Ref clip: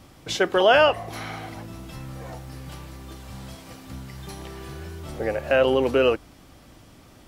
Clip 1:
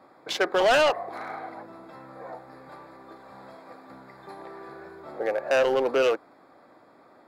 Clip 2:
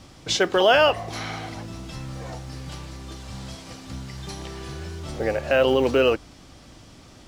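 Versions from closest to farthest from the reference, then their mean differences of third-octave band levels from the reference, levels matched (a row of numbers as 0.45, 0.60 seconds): 2, 1; 2.5, 7.5 decibels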